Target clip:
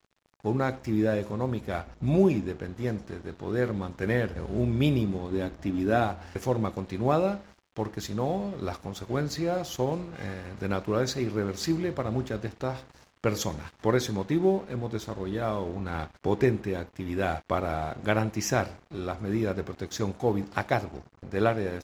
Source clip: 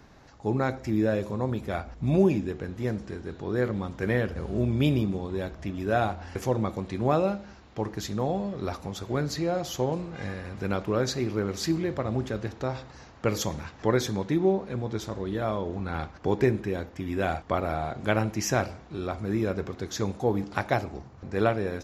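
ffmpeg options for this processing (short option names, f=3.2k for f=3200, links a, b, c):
-filter_complex "[0:a]asettb=1/sr,asplit=3[a][b][c];[a]atrim=end=5.314[d];[b]atrim=start=5.31:end=6.04,asetpts=PTS-STARTPTS,afade=t=in:d=0.004:c=qsin,afade=t=out:st=0.726:d=0.004:c=qsin,equalizer=f=270:w=2.7:g=9[e];[c]atrim=start=6.036[f];[d][e]acrossfade=d=0.004:c1=hsin:c2=qsin[g];[g][f]acrossfade=d=0.004:c1=qsin:c2=hsin,aeval=exprs='sgn(val(0))*max(abs(val(0))-0.00422,0)':c=same"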